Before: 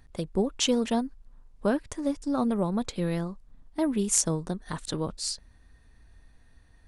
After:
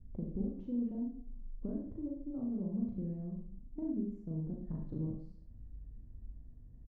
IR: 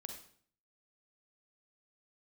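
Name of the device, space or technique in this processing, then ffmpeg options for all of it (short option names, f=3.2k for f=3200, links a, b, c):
television next door: -filter_complex "[0:a]adynamicequalizer=threshold=0.00447:dfrequency=1200:dqfactor=1.5:tfrequency=1200:tqfactor=1.5:attack=5:release=100:ratio=0.375:range=2:mode=cutabove:tftype=bell,acompressor=threshold=-37dB:ratio=5,lowpass=260[a];[1:a]atrim=start_sample=2205[b];[a][b]afir=irnorm=-1:irlink=0,asplit=2[c][d];[d]adelay=37,volume=-3dB[e];[c][e]amix=inputs=2:normalize=0,volume=7dB"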